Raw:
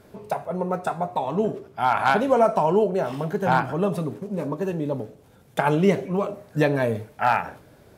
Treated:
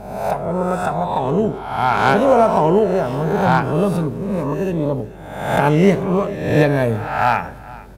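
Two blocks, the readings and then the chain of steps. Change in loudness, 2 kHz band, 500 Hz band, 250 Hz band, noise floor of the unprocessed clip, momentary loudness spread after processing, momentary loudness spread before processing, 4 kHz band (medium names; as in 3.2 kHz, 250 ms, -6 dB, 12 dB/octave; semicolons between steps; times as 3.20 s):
+6.0 dB, +5.5 dB, +6.0 dB, +7.0 dB, -53 dBFS, 9 LU, 10 LU, +6.0 dB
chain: reverse spectral sustain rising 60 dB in 0.87 s; bass shelf 160 Hz +9.5 dB; on a send: delay 446 ms -20.5 dB; on the sum: Chebyshev shaper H 8 -35 dB, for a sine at -3 dBFS; hum 50 Hz, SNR 24 dB; trim +2 dB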